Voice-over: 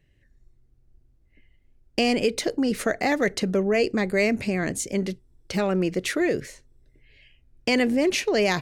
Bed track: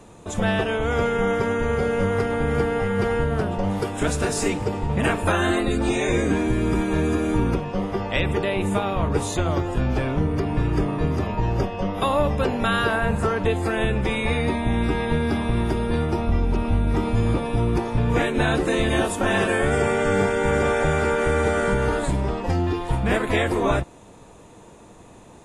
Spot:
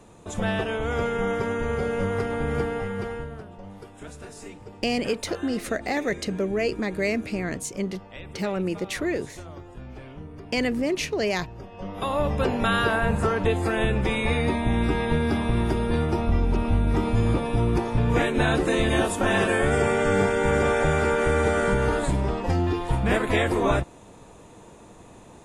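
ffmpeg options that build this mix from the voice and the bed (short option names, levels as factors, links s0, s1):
-filter_complex "[0:a]adelay=2850,volume=0.668[s0];[1:a]volume=4.47,afade=t=out:st=2.59:d=0.85:silence=0.199526,afade=t=in:st=11.62:d=0.87:silence=0.141254[s1];[s0][s1]amix=inputs=2:normalize=0"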